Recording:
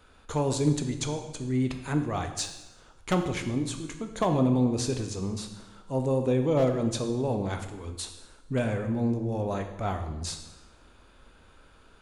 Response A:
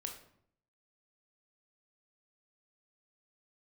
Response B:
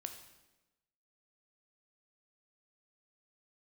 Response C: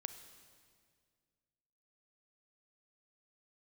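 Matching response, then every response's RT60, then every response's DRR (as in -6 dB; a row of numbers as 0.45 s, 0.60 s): B; 0.65 s, 1.1 s, 2.0 s; 2.5 dB, 5.5 dB, 9.5 dB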